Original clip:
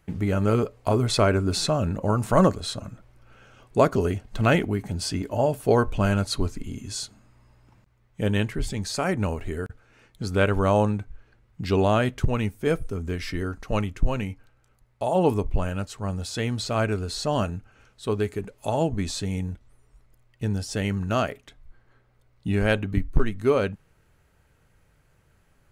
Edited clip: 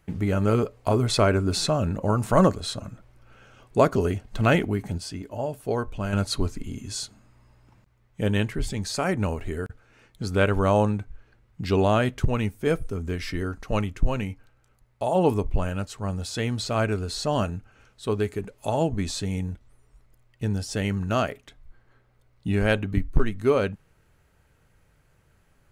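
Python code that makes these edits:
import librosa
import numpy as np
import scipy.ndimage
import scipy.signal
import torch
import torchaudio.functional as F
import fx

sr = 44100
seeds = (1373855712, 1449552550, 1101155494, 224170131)

y = fx.edit(x, sr, fx.clip_gain(start_s=4.98, length_s=1.15, db=-7.0), tone=tone)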